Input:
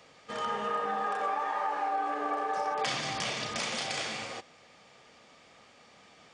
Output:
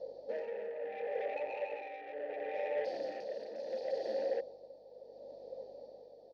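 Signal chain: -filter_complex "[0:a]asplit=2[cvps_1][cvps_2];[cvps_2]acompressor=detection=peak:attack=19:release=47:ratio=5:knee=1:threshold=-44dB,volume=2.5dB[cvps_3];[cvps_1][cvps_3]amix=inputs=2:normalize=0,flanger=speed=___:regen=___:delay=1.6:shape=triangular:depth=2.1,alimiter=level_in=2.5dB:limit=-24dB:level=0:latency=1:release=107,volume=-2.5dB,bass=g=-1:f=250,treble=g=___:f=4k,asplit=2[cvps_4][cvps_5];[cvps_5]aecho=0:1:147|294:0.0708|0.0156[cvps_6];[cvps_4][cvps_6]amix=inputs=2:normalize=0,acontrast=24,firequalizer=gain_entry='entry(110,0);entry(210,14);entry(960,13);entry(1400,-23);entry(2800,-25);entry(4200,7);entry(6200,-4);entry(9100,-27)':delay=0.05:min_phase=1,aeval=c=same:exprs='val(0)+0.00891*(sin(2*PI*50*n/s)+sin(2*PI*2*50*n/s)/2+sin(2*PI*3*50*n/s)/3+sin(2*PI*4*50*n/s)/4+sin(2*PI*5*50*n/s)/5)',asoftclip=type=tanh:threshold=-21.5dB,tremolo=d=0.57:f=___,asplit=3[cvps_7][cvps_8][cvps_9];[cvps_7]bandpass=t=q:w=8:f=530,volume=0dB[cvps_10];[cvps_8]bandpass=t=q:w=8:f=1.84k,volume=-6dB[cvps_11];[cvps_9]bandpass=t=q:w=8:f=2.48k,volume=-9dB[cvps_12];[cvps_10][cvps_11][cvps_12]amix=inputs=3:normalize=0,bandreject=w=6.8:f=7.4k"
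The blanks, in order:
1.8, 68, 5, 0.72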